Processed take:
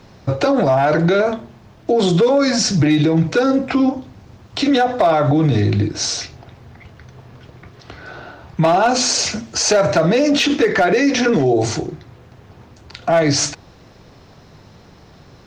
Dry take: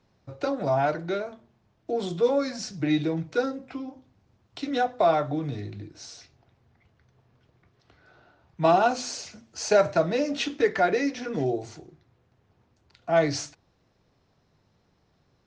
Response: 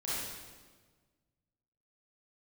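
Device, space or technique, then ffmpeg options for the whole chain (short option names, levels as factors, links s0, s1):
loud club master: -af "acompressor=threshold=0.0631:ratio=3,asoftclip=type=hard:threshold=0.1,alimiter=level_in=29.9:limit=0.891:release=50:level=0:latency=1,volume=0.447"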